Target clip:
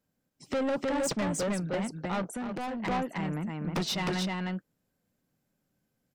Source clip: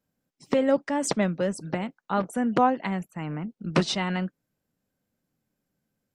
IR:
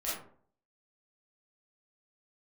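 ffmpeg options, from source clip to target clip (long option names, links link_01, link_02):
-filter_complex "[0:a]aecho=1:1:309:0.668,asoftclip=type=tanh:threshold=-26dB,asplit=3[link_01][link_02][link_03];[link_01]afade=type=out:start_time=2.33:duration=0.02[link_04];[link_02]acompressor=threshold=-34dB:ratio=6,afade=type=in:start_time=2.33:duration=0.02,afade=type=out:start_time=2.82:duration=0.02[link_05];[link_03]afade=type=in:start_time=2.82:duration=0.02[link_06];[link_04][link_05][link_06]amix=inputs=3:normalize=0"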